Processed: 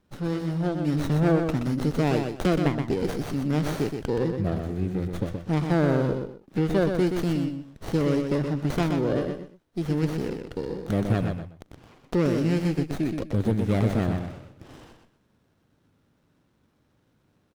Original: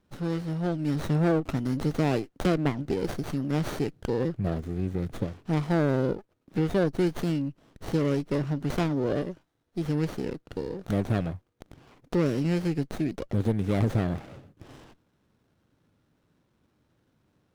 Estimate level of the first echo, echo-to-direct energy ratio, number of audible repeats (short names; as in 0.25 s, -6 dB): -6.0 dB, -6.0 dB, 2